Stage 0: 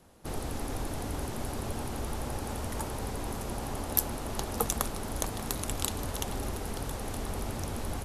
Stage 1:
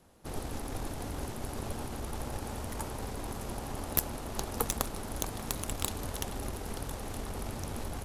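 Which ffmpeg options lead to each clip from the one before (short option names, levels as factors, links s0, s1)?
-af "aeval=exprs='0.668*(cos(1*acos(clip(val(0)/0.668,-1,1)))-cos(1*PI/2))+0.133*(cos(6*acos(clip(val(0)/0.668,-1,1)))-cos(6*PI/2))':c=same,volume=0.708"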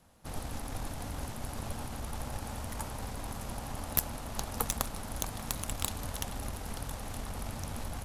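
-af "equalizer=f=380:w=2.1:g=-9"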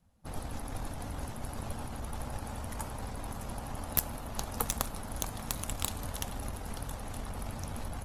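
-af "afftdn=nr=13:nf=-54"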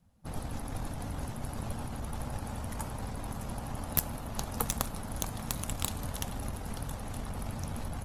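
-af "equalizer=f=150:t=o:w=1.5:g=4.5"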